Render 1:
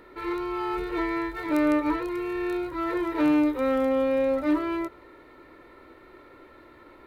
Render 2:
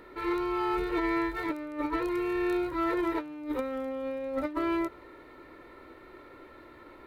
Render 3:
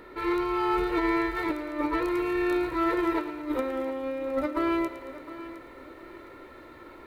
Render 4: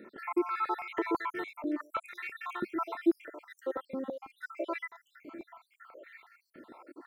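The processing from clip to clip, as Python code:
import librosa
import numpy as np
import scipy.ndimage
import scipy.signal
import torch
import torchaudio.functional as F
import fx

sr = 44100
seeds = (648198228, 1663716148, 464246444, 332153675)

y1 = fx.over_compress(x, sr, threshold_db=-27.0, ratio=-0.5)
y1 = y1 * 10.0 ** (-2.5 / 20.0)
y2 = fx.echo_thinned(y1, sr, ms=112, feedback_pct=63, hz=420.0, wet_db=-12.0)
y2 = fx.echo_crushed(y2, sr, ms=712, feedback_pct=35, bits=10, wet_db=-15.0)
y2 = y2 * 10.0 ** (3.0 / 20.0)
y3 = fx.spec_dropout(y2, sr, seeds[0], share_pct=67)
y3 = fx.filter_held_highpass(y3, sr, hz=6.1, low_hz=210.0, high_hz=2000.0)
y3 = y3 * 10.0 ** (-5.5 / 20.0)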